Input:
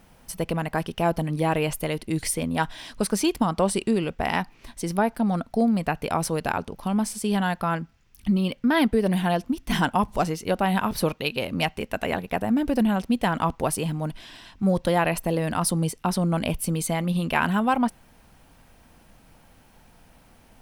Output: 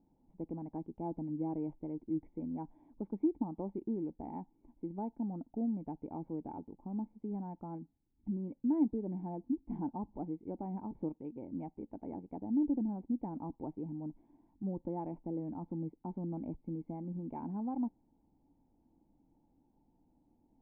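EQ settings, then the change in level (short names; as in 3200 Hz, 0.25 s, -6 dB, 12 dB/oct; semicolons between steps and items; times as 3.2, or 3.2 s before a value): vocal tract filter u; -5.0 dB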